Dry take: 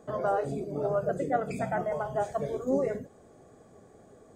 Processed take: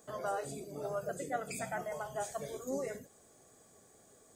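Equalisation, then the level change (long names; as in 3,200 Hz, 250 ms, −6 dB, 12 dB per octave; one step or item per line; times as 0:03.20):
first-order pre-emphasis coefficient 0.9
+8.5 dB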